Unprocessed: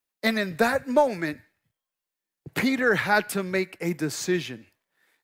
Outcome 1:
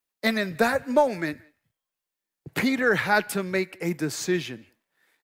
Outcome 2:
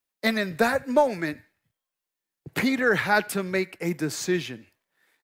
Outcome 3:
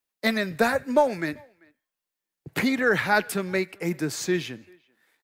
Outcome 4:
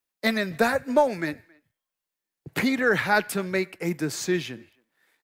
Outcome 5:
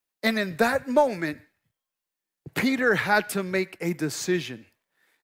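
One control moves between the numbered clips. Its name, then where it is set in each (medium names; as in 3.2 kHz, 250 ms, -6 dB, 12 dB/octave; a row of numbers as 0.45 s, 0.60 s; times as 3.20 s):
speakerphone echo, time: 180 ms, 80 ms, 390 ms, 270 ms, 120 ms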